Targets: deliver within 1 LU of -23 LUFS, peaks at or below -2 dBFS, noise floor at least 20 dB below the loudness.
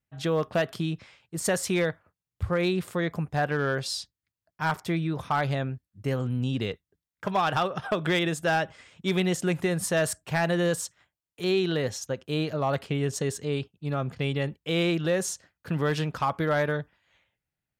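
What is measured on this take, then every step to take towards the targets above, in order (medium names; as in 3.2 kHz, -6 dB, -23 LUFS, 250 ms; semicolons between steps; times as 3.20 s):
clipped samples 0.3%; clipping level -17.5 dBFS; loudness -28.0 LUFS; peak level -17.5 dBFS; loudness target -23.0 LUFS
-> clip repair -17.5 dBFS; trim +5 dB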